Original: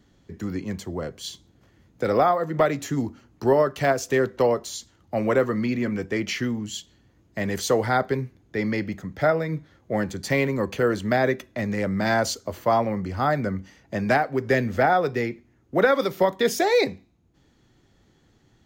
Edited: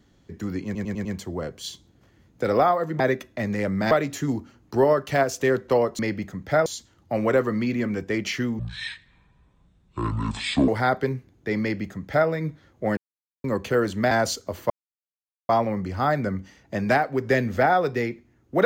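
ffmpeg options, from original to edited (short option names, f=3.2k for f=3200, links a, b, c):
-filter_complex "[0:a]asplit=15[a][b][c][d][e][f][g][h][i][j][k][l][m][n][o];[a]atrim=end=0.752[p];[b]atrim=start=0.648:end=0.752[q];[c]atrim=start=0.648:end=0.752[r];[d]atrim=start=0.648:end=0.752[s];[e]atrim=start=0.648:end=2.602[t];[f]atrim=start=11.188:end=12.102[u];[g]atrim=start=2.598:end=4.682[v];[h]atrim=start=8.688:end=9.362[w];[i]atrim=start=4.678:end=6.614[x];[j]atrim=start=6.61:end=7.76,asetpts=PTS-STARTPTS,asetrate=24255,aresample=44100,atrim=end_sample=92209,asetpts=PTS-STARTPTS[y];[k]atrim=start=7.756:end=10.05,asetpts=PTS-STARTPTS,afade=t=out:st=2.29:d=0.004:c=hsin[z];[l]atrim=start=10.05:end=10.52,asetpts=PTS-STARTPTS,volume=0[aa];[m]atrim=start=10.52:end=11.192,asetpts=PTS-STARTPTS,afade=t=in:d=0.004:c=hsin[ab];[n]atrim=start=12.098:end=12.69,asetpts=PTS-STARTPTS,afade=t=out:st=0.588:d=0.004:c=hsin,apad=pad_dur=0.79[ac];[o]atrim=start=12.69,asetpts=PTS-STARTPTS,afade=t=in:d=0.004:c=hsin[ad];[p][q]acrossfade=d=0.004:c1=hsin:c2=hsin[ae];[ae][r]acrossfade=d=0.004:c1=hsin:c2=hsin[af];[af][s]acrossfade=d=0.004:c1=hsin:c2=hsin[ag];[ag][t]acrossfade=d=0.004:c1=hsin:c2=hsin[ah];[ah][u]acrossfade=d=0.004:c1=hsin:c2=hsin[ai];[ai][v]acrossfade=d=0.004:c1=hsin:c2=hsin[aj];[aj][w]acrossfade=d=0.004:c1=hsin:c2=hsin[ak];[ak][x]acrossfade=d=0.004:c1=hsin:c2=hsin[al];[al][y]acrossfade=d=0.004:c1=hsin:c2=hsin[am];[z][aa][ab]concat=n=3:v=0:a=1[an];[am][an]acrossfade=d=0.004:c1=hsin:c2=hsin[ao];[ac][ad]concat=n=2:v=0:a=1[ap];[ao][ap]acrossfade=d=0.004:c1=hsin:c2=hsin"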